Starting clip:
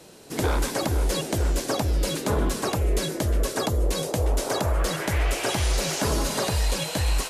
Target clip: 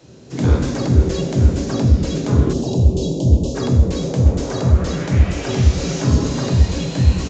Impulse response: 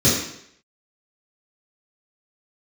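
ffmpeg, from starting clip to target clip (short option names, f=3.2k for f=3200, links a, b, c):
-filter_complex "[0:a]asplit=2[a][b];[1:a]atrim=start_sample=2205,lowshelf=f=300:g=10.5,adelay=17[c];[b][c]afir=irnorm=-1:irlink=0,volume=-23dB[d];[a][d]amix=inputs=2:normalize=0,aresample=16000,aresample=44100,asettb=1/sr,asplit=3[e][f][g];[e]atrim=end=2.534[h];[f]atrim=start=2.53:end=3.55,asetpts=PTS-STARTPTS,afade=t=in:d=0.004:c=qsin,afade=t=out:st=1.016:d=0.004:c=qsin,asuperstop=centerf=1600:order=8:qfactor=0.8[i];[g]atrim=start=3.546[j];[h][i]acrossfade=d=0.004:c1=hsin:c2=qsin[k];[k][j]acrossfade=d=0.004:c1=qsin:c2=hsin,asplit=2[l][m];[m]asplit=5[n][o][p][q][r];[n]adelay=80,afreqshift=110,volume=-16.5dB[s];[o]adelay=160,afreqshift=220,volume=-21.9dB[t];[p]adelay=240,afreqshift=330,volume=-27.2dB[u];[q]adelay=320,afreqshift=440,volume=-32.6dB[v];[r]adelay=400,afreqshift=550,volume=-37.9dB[w];[s][t][u][v][w]amix=inputs=5:normalize=0[x];[l][x]amix=inputs=2:normalize=0,volume=-2.5dB"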